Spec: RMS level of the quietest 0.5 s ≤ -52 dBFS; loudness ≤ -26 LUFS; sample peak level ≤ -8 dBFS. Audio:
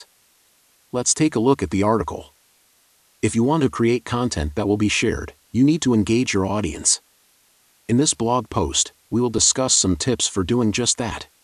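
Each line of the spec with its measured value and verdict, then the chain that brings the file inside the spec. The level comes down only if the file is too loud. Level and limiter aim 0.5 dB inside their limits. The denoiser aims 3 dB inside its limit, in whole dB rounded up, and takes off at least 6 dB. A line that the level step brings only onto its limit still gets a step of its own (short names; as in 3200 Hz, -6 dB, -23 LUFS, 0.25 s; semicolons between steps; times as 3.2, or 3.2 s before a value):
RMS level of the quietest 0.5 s -59 dBFS: OK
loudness -20.0 LUFS: fail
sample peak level -5.0 dBFS: fail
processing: gain -6.5 dB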